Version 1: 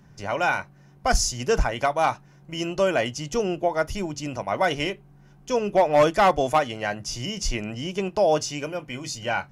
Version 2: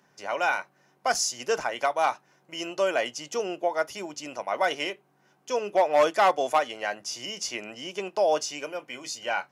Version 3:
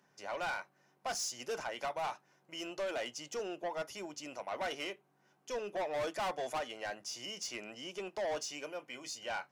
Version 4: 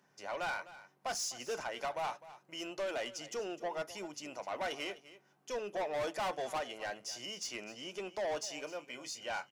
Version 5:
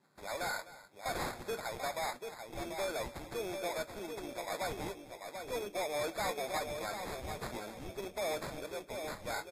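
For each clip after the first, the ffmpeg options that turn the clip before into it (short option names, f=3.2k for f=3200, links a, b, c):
-af "highpass=410,volume=-2dB"
-af "asoftclip=type=tanh:threshold=-25.5dB,volume=-7dB"
-af "aecho=1:1:255:0.15"
-filter_complex "[0:a]asplit=2[a][b];[b]adelay=739,lowpass=f=1.3k:p=1,volume=-5.5dB,asplit=2[c][d];[d]adelay=739,lowpass=f=1.3k:p=1,volume=0.36,asplit=2[e][f];[f]adelay=739,lowpass=f=1.3k:p=1,volume=0.36,asplit=2[g][h];[h]adelay=739,lowpass=f=1.3k:p=1,volume=0.36[i];[a][c][e][g][i]amix=inputs=5:normalize=0,acrusher=samples=15:mix=1:aa=0.000001" -ar 44100 -c:a libvorbis -b:a 48k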